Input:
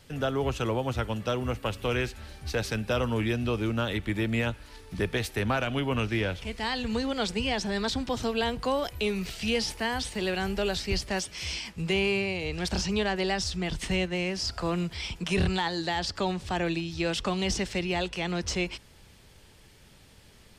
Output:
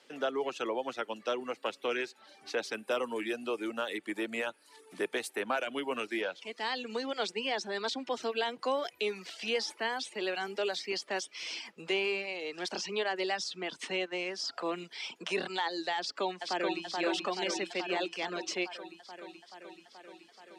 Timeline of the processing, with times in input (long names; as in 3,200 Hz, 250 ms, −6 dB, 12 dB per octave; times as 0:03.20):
0:02.73–0:06.22: high shelf with overshoot 7,200 Hz +9 dB, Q 1.5
0:15.98–0:16.84: delay throw 430 ms, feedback 75%, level −2.5 dB
whole clip: Bessel low-pass filter 6,200 Hz, order 2; reverb reduction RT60 0.65 s; high-pass filter 290 Hz 24 dB per octave; level −2.5 dB